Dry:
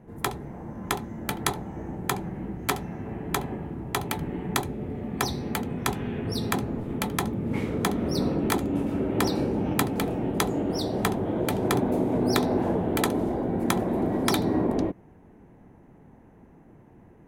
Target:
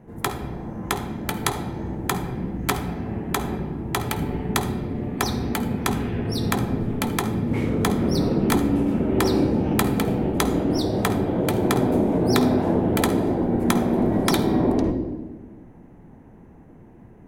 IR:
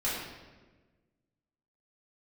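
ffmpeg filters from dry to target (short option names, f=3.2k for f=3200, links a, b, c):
-filter_complex "[0:a]asplit=2[a][b];[1:a]atrim=start_sample=2205,lowshelf=f=460:g=11,adelay=51[c];[b][c]afir=irnorm=-1:irlink=0,volume=-18.5dB[d];[a][d]amix=inputs=2:normalize=0,volume=2.5dB"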